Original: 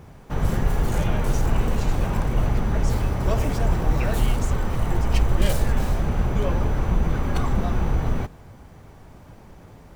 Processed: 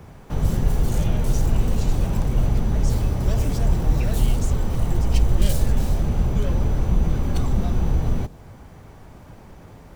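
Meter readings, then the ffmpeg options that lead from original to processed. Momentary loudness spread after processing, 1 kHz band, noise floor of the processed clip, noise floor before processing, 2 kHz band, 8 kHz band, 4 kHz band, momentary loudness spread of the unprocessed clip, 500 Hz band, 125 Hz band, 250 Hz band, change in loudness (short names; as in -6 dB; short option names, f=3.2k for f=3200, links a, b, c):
3 LU, -5.0 dB, -44 dBFS, -46 dBFS, -6.0 dB, +2.0 dB, -0.5 dB, 3 LU, -2.5 dB, +2.0 dB, +0.5 dB, +1.0 dB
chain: -filter_complex "[0:a]acrossover=split=240|880|2900[a][b][c][d];[b]asoftclip=type=tanh:threshold=-33.5dB[e];[c]acompressor=threshold=-51dB:ratio=6[f];[a][e][f][d]amix=inputs=4:normalize=0,volume=2dB"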